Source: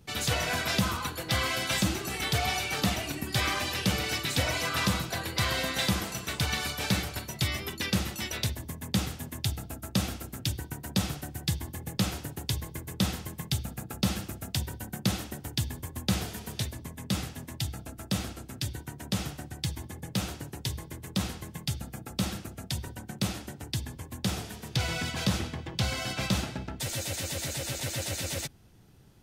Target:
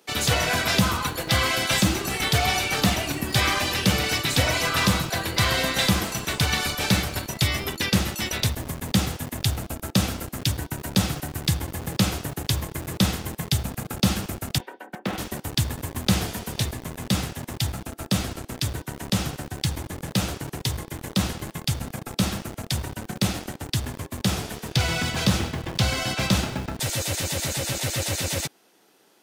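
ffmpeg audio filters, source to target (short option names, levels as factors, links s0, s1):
-filter_complex "[0:a]asettb=1/sr,asplit=3[s0][s1][s2];[s0]atrim=end=14.584[s3];[s1]atrim=start=14.58:end=15.18,asetpts=PTS-STARTPTS,afade=t=in:d=0.004:c=qsin,afade=t=out:st=0.596:d=0.004:c=qsin,acrossover=split=230 2700:gain=0.126 1 0.0708[s4][s5][s6];[s4][s5][s6]amix=inputs=3:normalize=0[s7];[s2]atrim=start=15.176[s8];[s3][s7]acrossfade=d=0.004:c1=hsin:c2=qsin[s9];[s9][s8]acrossfade=d=0.004:c1=qsin:c2=hsin,acrossover=split=300[s10][s11];[s10]acrusher=bits=6:mix=0:aa=0.000001[s12];[s12][s11]amix=inputs=2:normalize=0,volume=2.11"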